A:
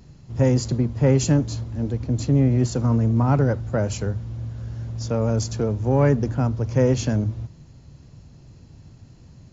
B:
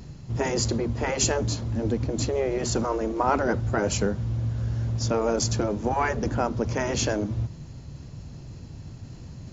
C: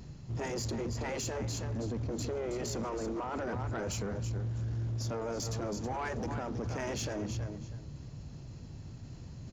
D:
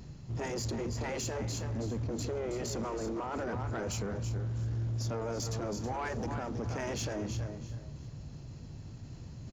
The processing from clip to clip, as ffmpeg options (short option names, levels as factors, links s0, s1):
-af "afftfilt=real='re*lt(hypot(re,im),0.447)':imag='im*lt(hypot(re,im),0.447)':win_size=1024:overlap=0.75,areverse,acompressor=mode=upward:threshold=0.01:ratio=2.5,areverse,volume=1.68"
-af "aecho=1:1:322|644:0.282|0.0507,alimiter=limit=0.1:level=0:latency=1:release=16,asoftclip=type=tanh:threshold=0.0631,volume=0.531"
-af "aecho=1:1:349|698|1047:0.15|0.0569|0.0216"